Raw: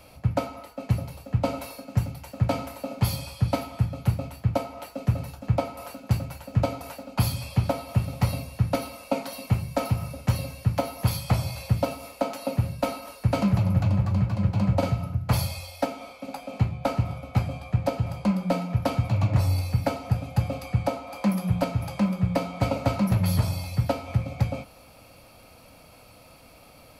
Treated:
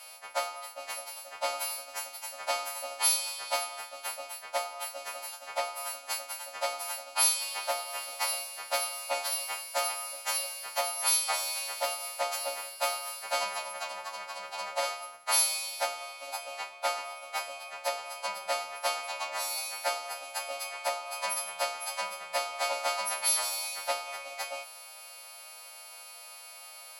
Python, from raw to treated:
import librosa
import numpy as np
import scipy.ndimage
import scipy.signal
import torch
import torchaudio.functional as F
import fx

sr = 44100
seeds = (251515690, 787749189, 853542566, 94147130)

y = fx.freq_snap(x, sr, grid_st=2)
y = scipy.signal.sosfilt(scipy.signal.butter(4, 650.0, 'highpass', fs=sr, output='sos'), y)
y = fx.transformer_sat(y, sr, knee_hz=1700.0)